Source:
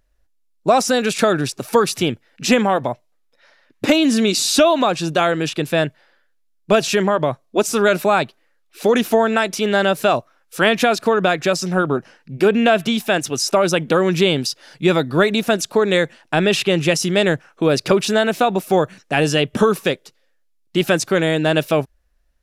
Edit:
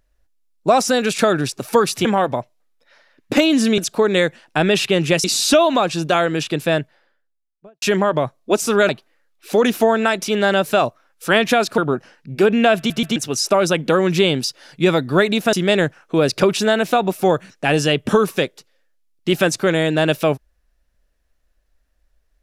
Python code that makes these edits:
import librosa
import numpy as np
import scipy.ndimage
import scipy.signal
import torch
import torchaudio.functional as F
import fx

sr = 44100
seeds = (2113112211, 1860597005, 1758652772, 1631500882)

y = fx.studio_fade_out(x, sr, start_s=5.68, length_s=1.2)
y = fx.edit(y, sr, fx.cut(start_s=2.05, length_s=0.52),
    fx.cut(start_s=7.95, length_s=0.25),
    fx.cut(start_s=11.09, length_s=0.71),
    fx.stutter_over(start_s=12.79, slice_s=0.13, count=3),
    fx.move(start_s=15.55, length_s=1.46, to_s=4.3), tone=tone)